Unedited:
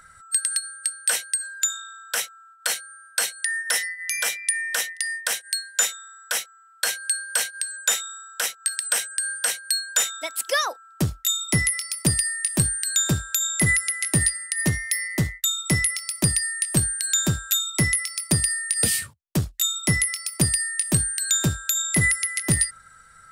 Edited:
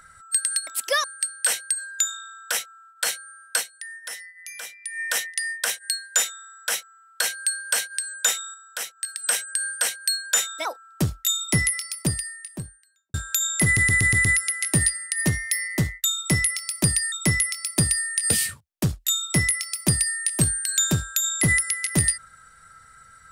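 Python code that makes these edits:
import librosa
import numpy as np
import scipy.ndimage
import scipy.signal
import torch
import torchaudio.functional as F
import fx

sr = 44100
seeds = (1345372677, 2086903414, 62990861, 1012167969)

y = fx.studio_fade_out(x, sr, start_s=11.62, length_s=1.52)
y = fx.edit(y, sr, fx.fade_down_up(start_s=3.21, length_s=1.42, db=-12.0, fade_s=0.44, curve='exp'),
    fx.clip_gain(start_s=8.17, length_s=0.7, db=-5.5),
    fx.move(start_s=10.28, length_s=0.37, to_s=0.67),
    fx.stutter(start_s=13.65, slice_s=0.12, count=6),
    fx.cut(start_s=16.52, length_s=1.13), tone=tone)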